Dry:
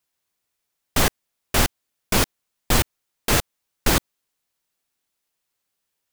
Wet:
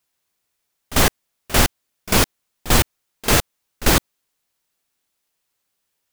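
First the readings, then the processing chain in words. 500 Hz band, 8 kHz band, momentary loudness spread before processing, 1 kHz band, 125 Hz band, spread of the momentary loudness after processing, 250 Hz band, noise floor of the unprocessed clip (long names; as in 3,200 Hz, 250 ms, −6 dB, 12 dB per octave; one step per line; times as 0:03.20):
+3.5 dB, +3.5 dB, 5 LU, +3.5 dB, +3.5 dB, 5 LU, +3.5 dB, −79 dBFS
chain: echo ahead of the sound 46 ms −17 dB
level +3.5 dB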